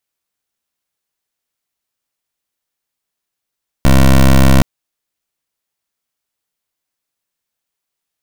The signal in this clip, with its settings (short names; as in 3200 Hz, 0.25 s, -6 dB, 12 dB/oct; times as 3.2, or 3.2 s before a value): pulse 66.6 Hz, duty 16% -6.5 dBFS 0.77 s